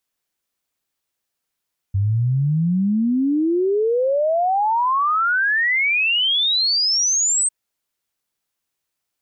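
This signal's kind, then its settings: log sweep 95 Hz -> 8.4 kHz 5.55 s -15.5 dBFS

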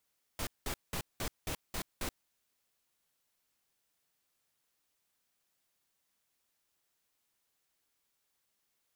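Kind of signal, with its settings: noise bursts pink, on 0.08 s, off 0.19 s, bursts 7, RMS -36.5 dBFS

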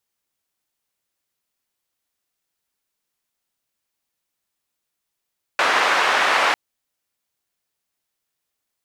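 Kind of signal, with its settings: noise band 670–1700 Hz, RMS -18 dBFS 0.95 s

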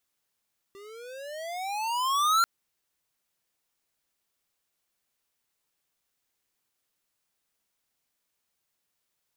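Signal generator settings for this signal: gliding synth tone square, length 1.69 s, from 390 Hz, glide +22 st, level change +26 dB, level -21 dB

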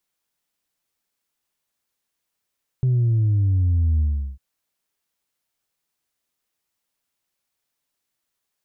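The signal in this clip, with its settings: sub drop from 130 Hz, over 1.55 s, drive 1 dB, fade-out 0.38 s, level -16 dB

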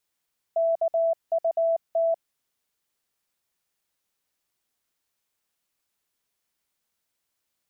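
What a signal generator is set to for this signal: Morse "KUT" 19 wpm 662 Hz -19.5 dBFS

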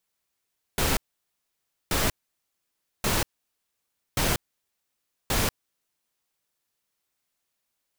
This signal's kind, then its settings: noise bursts pink, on 0.19 s, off 0.94 s, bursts 5, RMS -24 dBFS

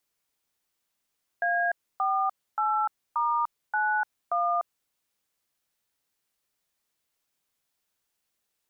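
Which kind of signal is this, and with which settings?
DTMF "A48*91", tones 297 ms, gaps 282 ms, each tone -25.5 dBFS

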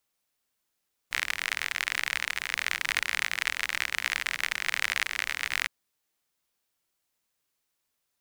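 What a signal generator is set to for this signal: rain from filtered ticks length 4.56 s, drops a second 51, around 2 kHz, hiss -22 dB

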